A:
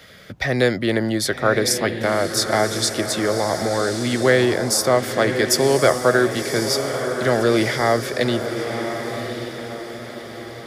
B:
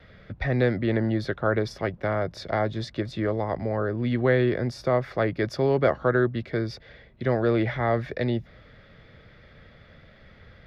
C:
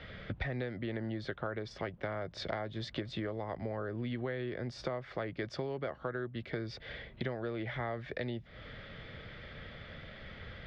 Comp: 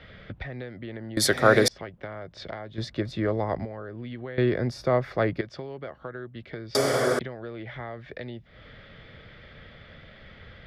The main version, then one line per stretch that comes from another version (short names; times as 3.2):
C
1.17–1.68 from A
2.78–3.65 from B
4.38–5.41 from B
6.75–7.19 from A